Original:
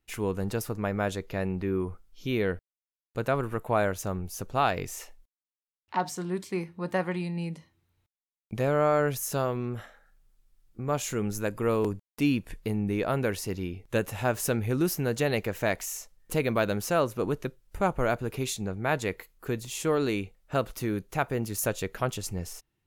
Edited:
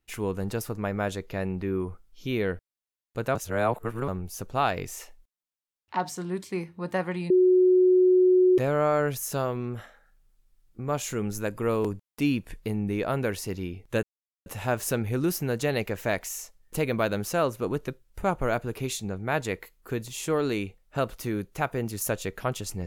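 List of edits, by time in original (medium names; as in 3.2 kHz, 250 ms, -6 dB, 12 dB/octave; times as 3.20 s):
3.35–4.08 s: reverse
7.30–8.58 s: bleep 367 Hz -15.5 dBFS
14.03 s: insert silence 0.43 s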